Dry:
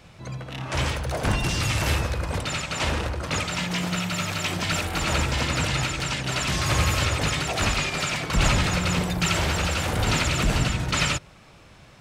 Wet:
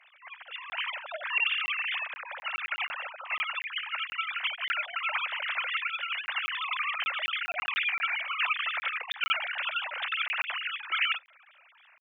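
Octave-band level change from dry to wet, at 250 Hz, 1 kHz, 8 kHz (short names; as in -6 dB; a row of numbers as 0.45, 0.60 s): under -40 dB, -5.5 dB, under -35 dB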